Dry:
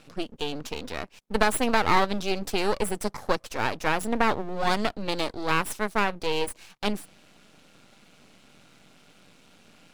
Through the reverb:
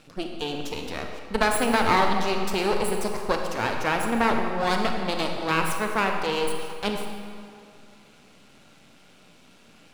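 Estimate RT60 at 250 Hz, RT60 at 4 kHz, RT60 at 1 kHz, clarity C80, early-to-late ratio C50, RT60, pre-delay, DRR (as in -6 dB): 2.2 s, 1.6 s, 2.5 s, 4.5 dB, 3.5 dB, 2.4 s, 28 ms, 2.5 dB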